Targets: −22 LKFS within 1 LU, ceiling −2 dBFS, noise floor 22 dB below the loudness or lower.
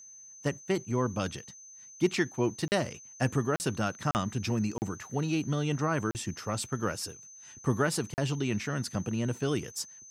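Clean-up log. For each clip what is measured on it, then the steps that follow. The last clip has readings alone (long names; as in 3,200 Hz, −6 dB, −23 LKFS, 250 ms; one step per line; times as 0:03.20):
number of dropouts 6; longest dropout 39 ms; interfering tone 6,200 Hz; level of the tone −48 dBFS; integrated loudness −31.5 LKFS; sample peak −13.0 dBFS; target loudness −22.0 LKFS
→ repair the gap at 0:02.68/0:03.56/0:04.11/0:04.78/0:06.11/0:08.14, 39 ms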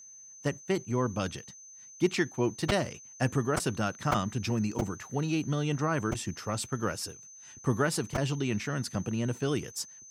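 number of dropouts 0; interfering tone 6,200 Hz; level of the tone −48 dBFS
→ notch filter 6,200 Hz, Q 30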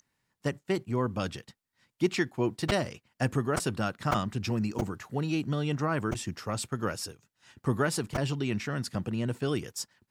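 interfering tone none found; integrated loudness −31.5 LKFS; sample peak −12.5 dBFS; target loudness −22.0 LKFS
→ level +9.5 dB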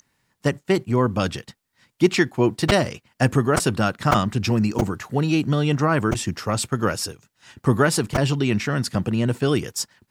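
integrated loudness −22.0 LKFS; sample peak −3.0 dBFS; background noise floor −72 dBFS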